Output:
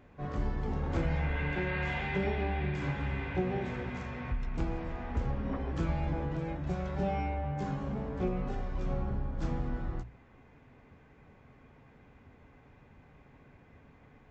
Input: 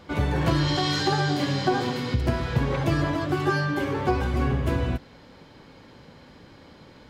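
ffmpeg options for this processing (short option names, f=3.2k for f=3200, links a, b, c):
-af "asetrate=21874,aresample=44100,bandreject=f=60:t=h:w=6,bandreject=f=120:t=h:w=6,bandreject=f=180:t=h:w=6,volume=-8dB"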